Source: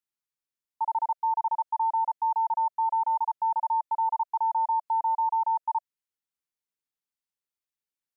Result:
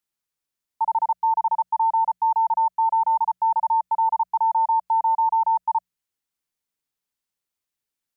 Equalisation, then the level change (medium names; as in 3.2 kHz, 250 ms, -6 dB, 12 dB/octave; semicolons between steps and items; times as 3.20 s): tone controls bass +3 dB, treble +1 dB; hum notches 60/120/180 Hz; +5.5 dB